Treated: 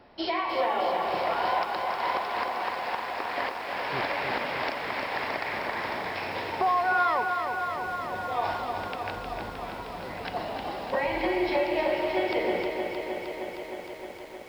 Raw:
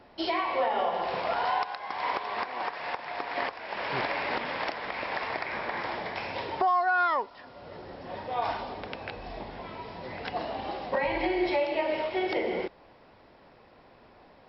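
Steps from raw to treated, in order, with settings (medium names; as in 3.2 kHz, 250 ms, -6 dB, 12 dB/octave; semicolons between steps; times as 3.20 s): bit-crushed delay 310 ms, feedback 80%, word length 9-bit, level -6 dB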